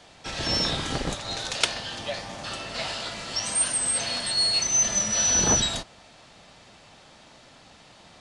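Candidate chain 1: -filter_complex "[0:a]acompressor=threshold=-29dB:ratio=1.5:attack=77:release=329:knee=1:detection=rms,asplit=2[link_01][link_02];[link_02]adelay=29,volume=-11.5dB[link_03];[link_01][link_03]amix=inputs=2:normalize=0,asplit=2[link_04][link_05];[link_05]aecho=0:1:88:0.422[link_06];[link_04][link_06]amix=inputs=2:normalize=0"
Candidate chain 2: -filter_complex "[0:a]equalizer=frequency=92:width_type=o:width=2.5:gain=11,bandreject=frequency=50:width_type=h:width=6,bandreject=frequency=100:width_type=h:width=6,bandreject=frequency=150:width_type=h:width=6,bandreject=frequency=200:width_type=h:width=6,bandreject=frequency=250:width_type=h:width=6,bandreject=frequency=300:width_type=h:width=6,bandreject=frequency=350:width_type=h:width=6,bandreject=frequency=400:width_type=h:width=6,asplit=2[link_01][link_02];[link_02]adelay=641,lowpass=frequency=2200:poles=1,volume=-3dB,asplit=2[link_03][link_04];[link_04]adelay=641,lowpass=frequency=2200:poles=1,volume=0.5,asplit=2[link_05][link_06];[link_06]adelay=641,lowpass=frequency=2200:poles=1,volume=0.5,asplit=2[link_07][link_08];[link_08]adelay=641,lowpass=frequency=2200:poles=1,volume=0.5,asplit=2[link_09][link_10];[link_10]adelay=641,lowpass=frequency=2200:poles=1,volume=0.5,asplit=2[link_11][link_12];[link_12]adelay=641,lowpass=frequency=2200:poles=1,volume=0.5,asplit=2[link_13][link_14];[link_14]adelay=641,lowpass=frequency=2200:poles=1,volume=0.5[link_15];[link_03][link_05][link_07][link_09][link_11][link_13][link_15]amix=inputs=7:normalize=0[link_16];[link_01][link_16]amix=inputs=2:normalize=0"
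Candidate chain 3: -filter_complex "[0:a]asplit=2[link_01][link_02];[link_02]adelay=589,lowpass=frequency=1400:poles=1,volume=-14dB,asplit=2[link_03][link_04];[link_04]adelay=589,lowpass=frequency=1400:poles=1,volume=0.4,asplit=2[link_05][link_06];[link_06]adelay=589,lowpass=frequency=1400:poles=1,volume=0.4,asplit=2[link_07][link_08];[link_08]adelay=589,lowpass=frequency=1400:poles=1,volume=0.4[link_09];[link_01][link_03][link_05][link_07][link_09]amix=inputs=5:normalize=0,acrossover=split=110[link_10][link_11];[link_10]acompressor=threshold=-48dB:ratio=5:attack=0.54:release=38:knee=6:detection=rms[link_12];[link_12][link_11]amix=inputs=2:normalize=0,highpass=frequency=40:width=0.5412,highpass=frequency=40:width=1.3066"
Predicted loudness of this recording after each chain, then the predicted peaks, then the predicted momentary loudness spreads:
−25.5, −23.5, −24.0 LKFS; −5.0, −3.5, −4.0 dBFS; 11, 17, 14 LU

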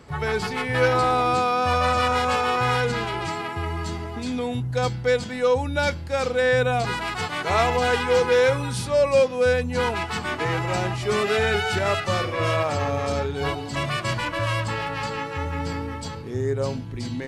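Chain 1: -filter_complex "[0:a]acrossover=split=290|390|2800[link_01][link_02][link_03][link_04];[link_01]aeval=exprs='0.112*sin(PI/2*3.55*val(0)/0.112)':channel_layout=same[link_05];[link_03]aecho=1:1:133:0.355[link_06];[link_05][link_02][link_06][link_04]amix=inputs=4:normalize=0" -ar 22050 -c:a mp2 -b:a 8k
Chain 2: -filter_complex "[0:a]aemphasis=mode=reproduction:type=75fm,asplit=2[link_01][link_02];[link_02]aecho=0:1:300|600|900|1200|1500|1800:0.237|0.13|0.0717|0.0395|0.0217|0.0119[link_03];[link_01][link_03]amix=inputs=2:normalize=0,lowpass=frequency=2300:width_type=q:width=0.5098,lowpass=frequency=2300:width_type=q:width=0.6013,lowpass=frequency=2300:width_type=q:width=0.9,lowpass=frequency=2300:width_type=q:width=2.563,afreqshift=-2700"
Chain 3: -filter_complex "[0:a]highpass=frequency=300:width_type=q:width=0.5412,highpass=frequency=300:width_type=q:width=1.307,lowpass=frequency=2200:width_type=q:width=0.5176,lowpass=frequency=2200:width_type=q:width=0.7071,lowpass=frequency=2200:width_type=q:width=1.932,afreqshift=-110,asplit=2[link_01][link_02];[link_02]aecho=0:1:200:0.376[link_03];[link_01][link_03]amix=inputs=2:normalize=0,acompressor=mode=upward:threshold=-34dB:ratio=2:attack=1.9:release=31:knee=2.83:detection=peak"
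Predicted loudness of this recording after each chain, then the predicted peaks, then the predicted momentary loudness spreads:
−21.5, −20.5, −24.0 LKFS; −6.5, −8.0, −8.5 dBFS; 5, 9, 11 LU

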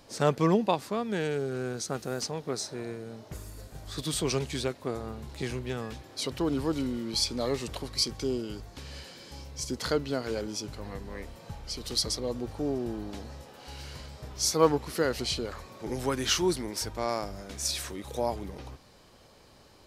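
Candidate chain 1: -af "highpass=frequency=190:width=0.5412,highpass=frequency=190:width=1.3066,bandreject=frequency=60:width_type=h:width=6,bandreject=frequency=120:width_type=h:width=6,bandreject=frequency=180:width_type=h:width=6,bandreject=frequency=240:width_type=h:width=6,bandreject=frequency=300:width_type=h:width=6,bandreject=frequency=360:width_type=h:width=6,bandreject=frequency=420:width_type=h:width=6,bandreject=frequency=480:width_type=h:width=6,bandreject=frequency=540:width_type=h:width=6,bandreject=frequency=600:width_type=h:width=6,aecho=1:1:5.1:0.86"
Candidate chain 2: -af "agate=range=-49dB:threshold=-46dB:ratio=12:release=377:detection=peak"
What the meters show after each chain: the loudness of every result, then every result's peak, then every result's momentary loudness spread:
−29.5, −31.0 LKFS; −7.5, −8.0 dBFS; 18, 17 LU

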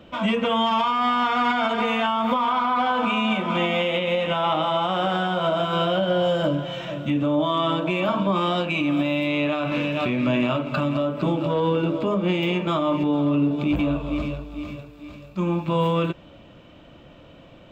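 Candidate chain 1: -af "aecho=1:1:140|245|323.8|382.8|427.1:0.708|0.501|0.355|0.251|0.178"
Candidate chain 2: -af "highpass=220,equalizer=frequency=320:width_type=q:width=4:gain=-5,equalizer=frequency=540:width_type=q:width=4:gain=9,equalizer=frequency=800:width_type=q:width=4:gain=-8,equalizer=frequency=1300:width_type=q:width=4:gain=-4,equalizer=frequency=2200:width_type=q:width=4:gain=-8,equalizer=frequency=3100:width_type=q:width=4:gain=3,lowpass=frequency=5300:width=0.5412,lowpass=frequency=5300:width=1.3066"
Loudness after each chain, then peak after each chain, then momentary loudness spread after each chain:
−20.0, −22.5 LKFS; −7.0, −8.0 dBFS; 6, 9 LU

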